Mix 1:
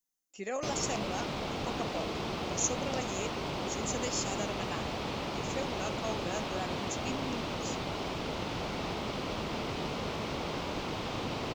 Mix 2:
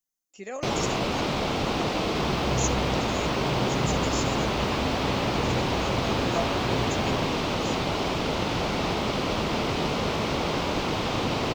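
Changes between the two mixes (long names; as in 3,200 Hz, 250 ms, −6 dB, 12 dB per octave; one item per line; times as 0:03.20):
first sound +9.0 dB
second sound: unmuted
reverb: on, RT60 1.2 s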